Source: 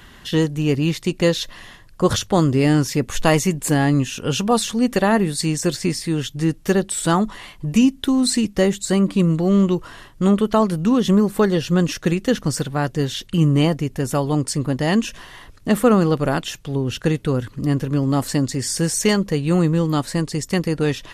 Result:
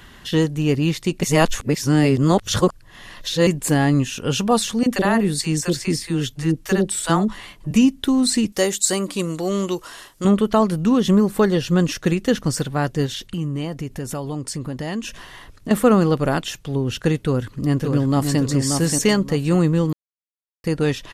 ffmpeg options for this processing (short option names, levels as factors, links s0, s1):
-filter_complex "[0:a]asettb=1/sr,asplit=3[s0][s1][s2];[s0]atrim=end=4.834[s3];[s1]atrim=start=4.83:end=7.71,asetpts=PTS-STARTPTS,afade=t=in:d=0.004:c=qsin,afade=t=out:st=2.876:d=0.004:c=qsin,acrossover=split=610[s4][s5];[s4]adelay=30[s6];[s6][s5]amix=inputs=2:normalize=0,atrim=end_sample=127008[s7];[s2]atrim=start=7.706[s8];[s3][s7]acrossfade=d=0.004:c1=hsin:c2=qsin[s9];[s9][s8]acrossfade=d=0.004:c1=qsin:c2=hsin,asettb=1/sr,asplit=3[s10][s11][s12];[s10]atrim=end=8.524[s13];[s11]atrim=start=8.52:end=10.25,asetpts=PTS-STARTPTS,afade=t=in:d=0.004:c=qsin,afade=t=out:st=1.726:d=0.004:c=qsin,bass=f=250:g=-13,treble=f=4000:g=10[s14];[s12]atrim=start=10.246[s15];[s13][s14]acrossfade=d=0.004:c1=hsin:c2=qsin[s16];[s16][s15]acrossfade=d=0.004:c1=qsin:c2=hsin,asettb=1/sr,asplit=3[s17][s18][s19];[s17]atrim=end=13.064[s20];[s18]atrim=start=13.06:end=15.71,asetpts=PTS-STARTPTS,afade=t=in:d=0.004:c=qsin,afade=t=out:st=2.646:d=0.004:c=qsin,acompressor=threshold=0.0501:ratio=2.5:attack=3.2:release=140:knee=1:detection=peak[s21];[s19]atrim=start=15.706[s22];[s20][s21]acrossfade=d=0.004:c1=hsin:c2=qsin[s23];[s23][s22]acrossfade=d=0.004:c1=qsin:c2=hsin,asplit=2[s24][s25];[s25]afade=t=in:st=17.26:d=0.01,afade=t=out:st=18.4:d=0.01,aecho=0:1:580|1160|1740:0.595662|0.148916|0.0372289[s26];[s24][s26]amix=inputs=2:normalize=0,asplit=5[s27][s28][s29][s30][s31];[s27]atrim=end=1.232[s32];[s28]atrim=start=1.228:end=3.472,asetpts=PTS-STARTPTS,areverse[s33];[s29]atrim=start=3.468:end=19.93,asetpts=PTS-STARTPTS,afade=t=out:st=16.458:d=0.004:c=hsin[s34];[s30]atrim=start=19.93:end=20.64,asetpts=PTS-STARTPTS,volume=0[s35];[s31]atrim=start=20.64,asetpts=PTS-STARTPTS,afade=t=in:d=0.004:c=hsin[s36];[s32][s33]acrossfade=d=0.004:c1=hsin:c2=hsin[s37];[s34][s35][s36]concat=n=3:v=0:a=1[s38];[s37][s38]acrossfade=d=0.004:c1=hsin:c2=hsin"